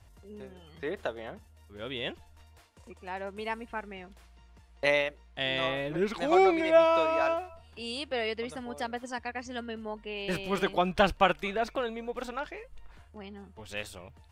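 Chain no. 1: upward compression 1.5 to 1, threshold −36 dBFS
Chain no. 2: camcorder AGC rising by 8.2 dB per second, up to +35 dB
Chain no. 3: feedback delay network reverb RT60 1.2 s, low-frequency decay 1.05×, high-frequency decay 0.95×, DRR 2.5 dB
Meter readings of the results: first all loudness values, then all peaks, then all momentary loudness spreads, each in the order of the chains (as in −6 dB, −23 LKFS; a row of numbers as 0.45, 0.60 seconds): −30.0, −27.5, −28.0 LKFS; −9.0, −9.0, −7.0 dBFS; 22, 19, 23 LU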